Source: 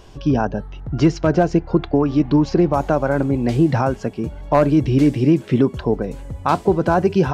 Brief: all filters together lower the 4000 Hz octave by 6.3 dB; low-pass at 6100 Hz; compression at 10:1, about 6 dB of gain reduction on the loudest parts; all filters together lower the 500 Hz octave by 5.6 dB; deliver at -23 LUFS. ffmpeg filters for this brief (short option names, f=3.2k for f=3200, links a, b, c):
-af "lowpass=6.1k,equalizer=f=500:t=o:g=-8,equalizer=f=4k:t=o:g=-8,acompressor=threshold=-18dB:ratio=10,volume=2dB"